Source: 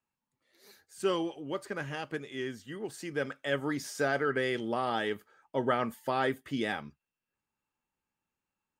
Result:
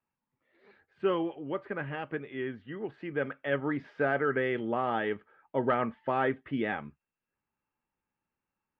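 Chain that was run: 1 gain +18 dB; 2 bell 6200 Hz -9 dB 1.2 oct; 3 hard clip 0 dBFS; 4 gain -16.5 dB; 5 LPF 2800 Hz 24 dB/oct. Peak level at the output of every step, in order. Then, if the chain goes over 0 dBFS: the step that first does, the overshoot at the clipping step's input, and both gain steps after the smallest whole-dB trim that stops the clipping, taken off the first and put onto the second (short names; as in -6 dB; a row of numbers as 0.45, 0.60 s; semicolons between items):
+3.5, +3.5, 0.0, -16.5, -16.0 dBFS; step 1, 3.5 dB; step 1 +14 dB, step 4 -12.5 dB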